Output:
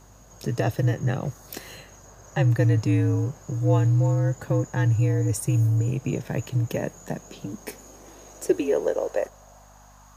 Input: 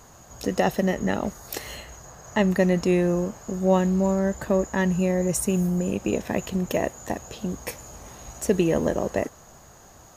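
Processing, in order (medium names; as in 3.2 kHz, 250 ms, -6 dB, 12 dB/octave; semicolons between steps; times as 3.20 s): frequency shift -66 Hz; high-pass sweep 110 Hz -> 1 kHz, 6.43–10.14 s; hum 50 Hz, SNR 29 dB; trim -4.5 dB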